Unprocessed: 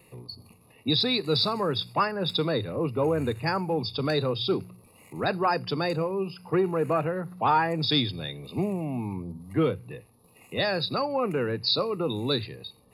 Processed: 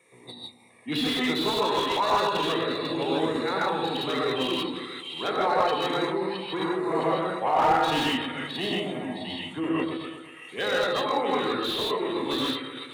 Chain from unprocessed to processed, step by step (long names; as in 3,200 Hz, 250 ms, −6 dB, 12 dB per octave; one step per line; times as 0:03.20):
meter weighting curve A
echo with a time of its own for lows and highs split 2,100 Hz, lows 124 ms, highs 664 ms, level −6 dB
reverb whose tail is shaped and stops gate 180 ms rising, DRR −4 dB
formants moved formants −3 semitones
slew-rate limiting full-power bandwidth 170 Hz
level −2.5 dB